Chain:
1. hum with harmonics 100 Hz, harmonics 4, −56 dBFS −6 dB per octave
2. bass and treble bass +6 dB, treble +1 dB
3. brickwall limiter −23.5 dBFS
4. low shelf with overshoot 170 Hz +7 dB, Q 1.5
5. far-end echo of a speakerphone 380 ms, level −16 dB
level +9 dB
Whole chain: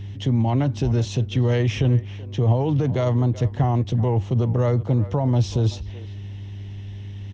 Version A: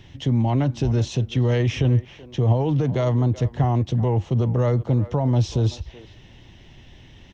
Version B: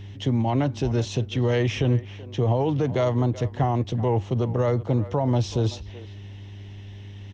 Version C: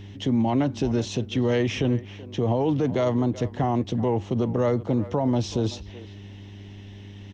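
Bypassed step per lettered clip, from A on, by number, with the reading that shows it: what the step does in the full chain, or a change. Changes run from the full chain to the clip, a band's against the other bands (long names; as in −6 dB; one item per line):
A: 1, change in momentary loudness spread −11 LU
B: 2, 125 Hz band −5.0 dB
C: 4, 125 Hz band −8.5 dB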